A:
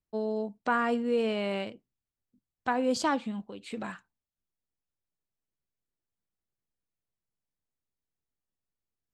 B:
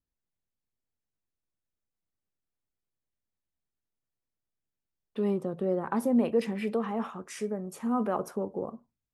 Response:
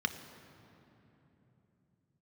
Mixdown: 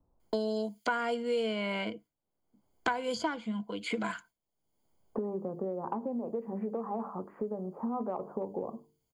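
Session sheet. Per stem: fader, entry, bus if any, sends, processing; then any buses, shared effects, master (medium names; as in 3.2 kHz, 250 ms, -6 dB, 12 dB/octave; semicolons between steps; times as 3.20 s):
0.0 dB, 0.20 s, no send, gate with hold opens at -56 dBFS; rippled EQ curve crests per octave 1.8, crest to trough 12 dB
-6.0 dB, 0.00 s, no send, steep low-pass 1 kHz 36 dB/octave; hum notches 50/100/150/200/250/300/350/400/450 Hz; compression, threshold -30 dBFS, peak gain reduction 10 dB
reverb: none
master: bass shelf 450 Hz -5 dB; three bands compressed up and down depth 100%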